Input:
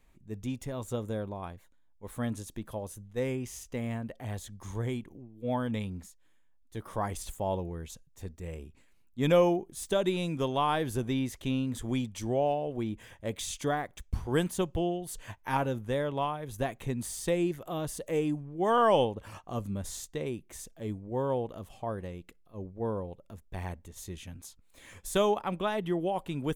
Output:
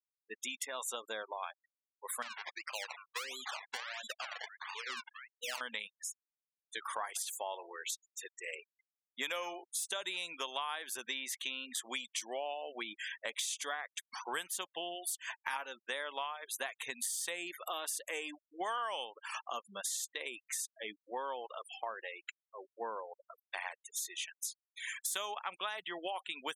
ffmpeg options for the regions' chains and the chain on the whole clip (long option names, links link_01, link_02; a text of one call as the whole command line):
ffmpeg -i in.wav -filter_complex "[0:a]asettb=1/sr,asplit=3[link_01][link_02][link_03];[link_01]atrim=end=2.224[link_04];[link_02]atrim=start=2.22:end=5.61,asetpts=PTS-STARTPTS,afade=type=in:duration=0.004:curve=qsin,afade=type=out:start_time=3.386:duration=0.004:curve=qsin,acompressor=threshold=-37dB:ratio=4:attack=3.2:release=140:knee=1:detection=peak,acrusher=samples=24:mix=1:aa=0.000001:lfo=1:lforange=24:lforate=1.5[link_05];[link_03]atrim=start=5.606[link_06];[link_04][link_05]acrossfade=duration=0.004:curve1=hsin:curve2=qsin[link_07];[link_07][link_06]acrossfade=duration=0.004:curve1=qsin:curve2=hsin,asettb=1/sr,asplit=3[link_08][link_09][link_10];[link_08]atrim=end=7.054[link_11];[link_09]atrim=start=7.05:end=9.64,asetpts=PTS-STARTPTS,afade=type=in:duration=0.004:curve=qsin,afade=type=out:start_time=2.586:duration=0.004:curve=qsin,highpass=frequency=180:width=0.5412,highpass=frequency=180:width=1.3066,aecho=1:1:113:0.112,atrim=end_sample=114219[link_12];[link_10]atrim=start=9.636[link_13];[link_11][link_12]acrossfade=duration=0.004:curve1=hsin:curve2=qsin[link_14];[link_14][link_13]acrossfade=duration=0.004:curve1=qsin:curve2=hsin,highpass=1400,afftfilt=real='re*gte(hypot(re,im),0.00251)':imag='im*gte(hypot(re,im),0.00251)':win_size=1024:overlap=0.75,acompressor=threshold=-51dB:ratio=6,volume=14.5dB" out.wav